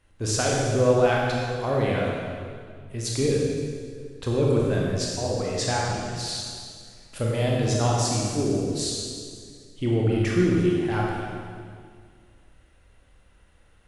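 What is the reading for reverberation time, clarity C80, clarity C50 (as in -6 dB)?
2.1 s, 0.5 dB, -1.0 dB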